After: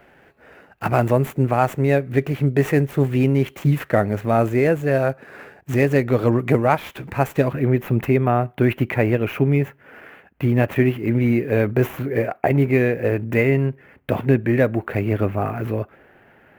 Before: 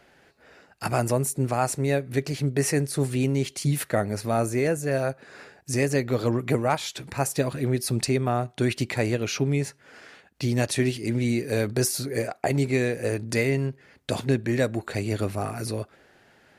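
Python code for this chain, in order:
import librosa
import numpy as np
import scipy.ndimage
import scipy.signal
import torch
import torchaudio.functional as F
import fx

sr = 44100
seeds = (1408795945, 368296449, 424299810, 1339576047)

y = scipy.signal.medfilt(x, 9)
y = fx.band_shelf(y, sr, hz=6000.0, db=fx.steps((0.0, -8.0), (7.51, -15.5)), octaves=1.7)
y = y * librosa.db_to_amplitude(6.5)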